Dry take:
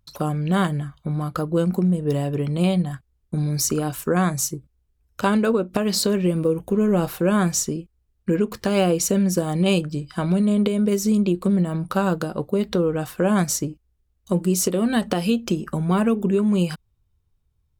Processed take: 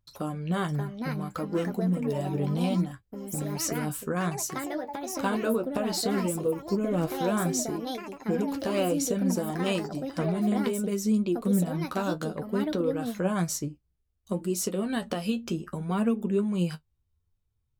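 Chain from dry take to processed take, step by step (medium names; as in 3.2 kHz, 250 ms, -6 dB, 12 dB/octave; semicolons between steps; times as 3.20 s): flange 0.62 Hz, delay 8.2 ms, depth 5.8 ms, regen +39%; ever faster or slower copies 632 ms, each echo +5 st, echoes 2, each echo -6 dB; trim -4 dB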